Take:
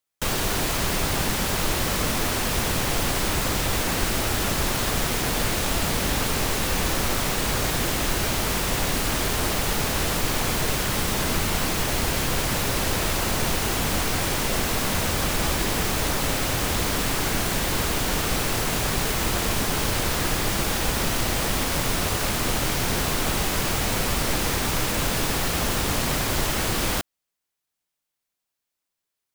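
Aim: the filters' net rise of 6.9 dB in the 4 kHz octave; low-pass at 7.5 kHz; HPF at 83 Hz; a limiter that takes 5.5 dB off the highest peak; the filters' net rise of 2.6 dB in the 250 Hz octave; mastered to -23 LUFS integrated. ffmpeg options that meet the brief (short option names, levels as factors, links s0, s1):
-af "highpass=83,lowpass=7500,equalizer=f=250:t=o:g=3.5,equalizer=f=4000:t=o:g=9,volume=1.06,alimiter=limit=0.178:level=0:latency=1"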